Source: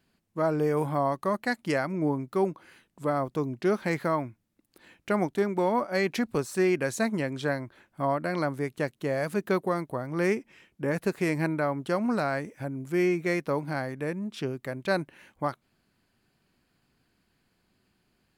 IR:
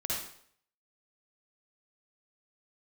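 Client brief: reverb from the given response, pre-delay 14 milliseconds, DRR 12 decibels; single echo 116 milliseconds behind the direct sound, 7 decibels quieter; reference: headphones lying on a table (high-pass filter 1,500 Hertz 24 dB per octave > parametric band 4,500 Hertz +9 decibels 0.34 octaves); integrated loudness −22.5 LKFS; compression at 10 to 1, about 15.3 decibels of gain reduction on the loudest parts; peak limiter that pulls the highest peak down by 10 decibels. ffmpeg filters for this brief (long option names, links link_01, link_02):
-filter_complex "[0:a]acompressor=threshold=-37dB:ratio=10,alimiter=level_in=11.5dB:limit=-24dB:level=0:latency=1,volume=-11.5dB,aecho=1:1:116:0.447,asplit=2[link_01][link_02];[1:a]atrim=start_sample=2205,adelay=14[link_03];[link_02][link_03]afir=irnorm=-1:irlink=0,volume=-16.5dB[link_04];[link_01][link_04]amix=inputs=2:normalize=0,highpass=frequency=1500:width=0.5412,highpass=frequency=1500:width=1.3066,equalizer=frequency=4500:width_type=o:width=0.34:gain=9,volume=30dB"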